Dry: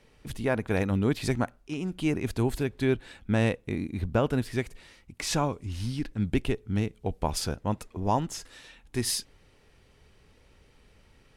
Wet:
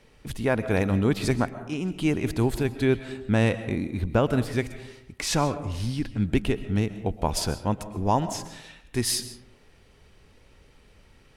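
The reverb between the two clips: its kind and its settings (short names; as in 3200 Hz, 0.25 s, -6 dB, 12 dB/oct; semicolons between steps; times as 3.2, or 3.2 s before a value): digital reverb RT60 0.86 s, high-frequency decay 0.4×, pre-delay 90 ms, DRR 12.5 dB; gain +3 dB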